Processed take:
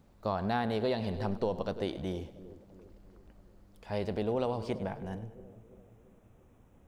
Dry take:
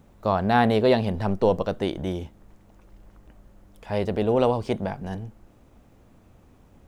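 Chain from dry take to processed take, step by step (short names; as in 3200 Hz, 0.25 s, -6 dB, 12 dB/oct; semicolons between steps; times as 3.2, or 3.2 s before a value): bell 4500 Hz +5.5 dB 0.38 oct, from 4.7 s -11.5 dB; split-band echo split 570 Hz, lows 0.34 s, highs 0.101 s, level -15.5 dB; compressor, threshold -19 dBFS, peak gain reduction 6 dB; gain -7.5 dB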